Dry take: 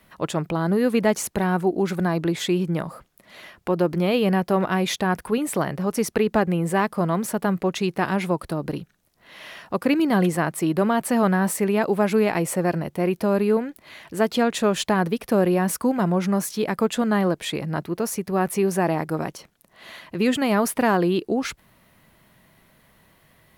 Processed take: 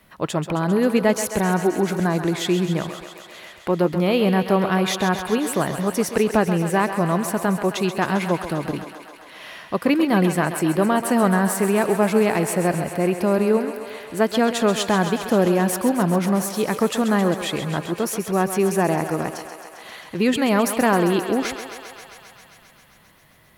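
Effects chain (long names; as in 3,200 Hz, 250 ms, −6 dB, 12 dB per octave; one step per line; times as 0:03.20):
feedback echo with a high-pass in the loop 133 ms, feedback 80%, high-pass 330 Hz, level −9.5 dB
level +1.5 dB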